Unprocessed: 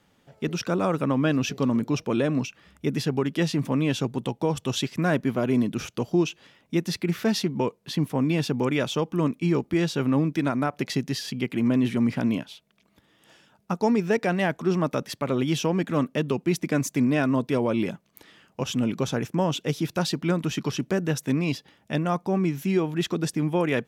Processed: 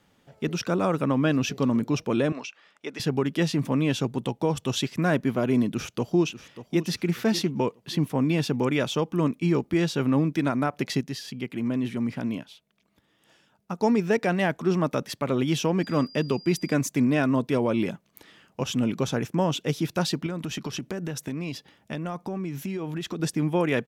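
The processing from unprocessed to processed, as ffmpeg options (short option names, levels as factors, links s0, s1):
-filter_complex "[0:a]asettb=1/sr,asplit=3[s0][s1][s2];[s0]atrim=end=2.324[s3];[s1]atrim=start=2.32:end=3,asetpts=PTS-STARTPTS,afade=t=in:d=0.004:c=qsin,afade=t=out:st=0.676:d=0.004:c=qsin,highpass=580,lowpass=6000[s4];[s2]atrim=start=2.996[s5];[s3][s4]acrossfade=d=0.004:c1=hsin:c2=qsin[s6];[s6][s5]acrossfade=d=0.004:c1=qsin:c2=hsin,asplit=2[s7][s8];[s8]afade=t=in:st=5.7:d=0.01,afade=t=out:st=6.84:d=0.01,aecho=0:1:590|1180|1770:0.199526|0.0698342|0.024442[s9];[s7][s9]amix=inputs=2:normalize=0,asettb=1/sr,asplit=3[s10][s11][s12];[s10]atrim=end=15.834[s13];[s11]atrim=start=15.83:end=16.74,asetpts=PTS-STARTPTS,afade=t=in:d=0.004:c=qsin,afade=t=out:st=0.906:d=0.004:c=qsin,aeval=exprs='val(0)+0.00562*sin(2*PI*4800*n/s)':c=same[s14];[s12]atrim=start=16.736[s15];[s13][s14]acrossfade=d=0.004:c1=hsin:c2=qsin[s16];[s16][s15]acrossfade=d=0.004:c1=qsin:c2=hsin,asettb=1/sr,asplit=3[s17][s18][s19];[s17]atrim=end=20.264[s20];[s18]atrim=start=20.26:end=23.2,asetpts=PTS-STARTPTS,afade=t=in:d=0.004:c=qsin,afade=t=out:st=2.936:d=0.004:c=qsin,acompressor=threshold=0.0447:ratio=12:attack=3.2:release=140:knee=1:detection=peak[s21];[s19]atrim=start=23.196[s22];[s20][s21]acrossfade=d=0.004:c1=hsin:c2=qsin[s23];[s23][s22]acrossfade=d=0.004:c1=qsin:c2=hsin,asplit=3[s24][s25][s26];[s24]atrim=end=11.012[s27];[s25]atrim=start=11.008:end=13.782,asetpts=PTS-STARTPTS,volume=0.562[s28];[s26]atrim=start=13.778[s29];[s27][s28]acrossfade=d=0.004:c1=hsin:c2=hsin[s30];[s30][s29]acrossfade=d=0.004:c1=hsin:c2=hsin"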